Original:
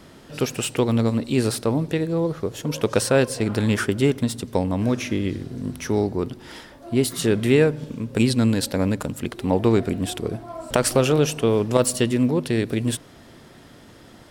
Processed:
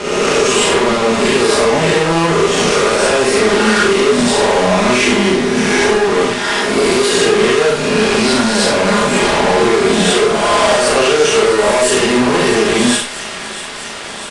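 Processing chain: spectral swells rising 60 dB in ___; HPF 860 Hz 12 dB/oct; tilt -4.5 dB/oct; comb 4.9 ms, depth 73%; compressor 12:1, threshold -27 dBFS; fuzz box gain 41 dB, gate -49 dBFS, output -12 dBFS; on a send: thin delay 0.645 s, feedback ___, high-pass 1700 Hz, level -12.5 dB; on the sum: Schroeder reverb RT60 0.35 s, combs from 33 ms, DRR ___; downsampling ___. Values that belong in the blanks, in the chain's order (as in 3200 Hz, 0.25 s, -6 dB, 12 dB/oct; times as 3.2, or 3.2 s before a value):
1.02 s, 82%, 0.5 dB, 22050 Hz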